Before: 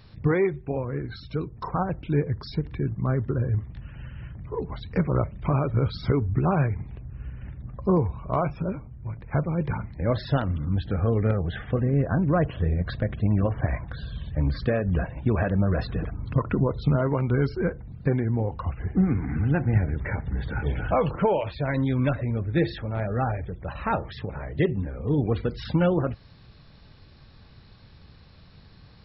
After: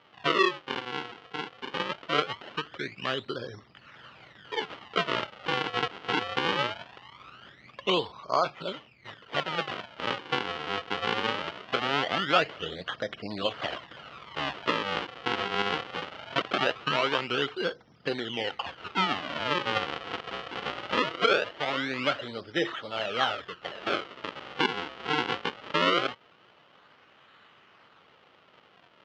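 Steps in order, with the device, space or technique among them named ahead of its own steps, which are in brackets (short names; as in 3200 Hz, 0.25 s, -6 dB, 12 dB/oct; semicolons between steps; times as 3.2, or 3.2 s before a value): circuit-bent sampling toy (decimation with a swept rate 41×, swing 160% 0.21 Hz; speaker cabinet 440–4500 Hz, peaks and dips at 1300 Hz +7 dB, 2000 Hz +3 dB, 3000 Hz +10 dB)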